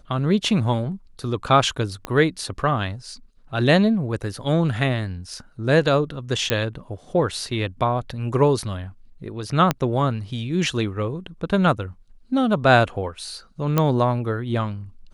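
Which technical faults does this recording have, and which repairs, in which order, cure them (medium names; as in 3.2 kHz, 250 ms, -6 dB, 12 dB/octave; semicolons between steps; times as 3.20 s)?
2.05 s: pop -13 dBFS
6.50 s: pop -4 dBFS
9.71 s: pop -5 dBFS
13.78 s: pop -6 dBFS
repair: de-click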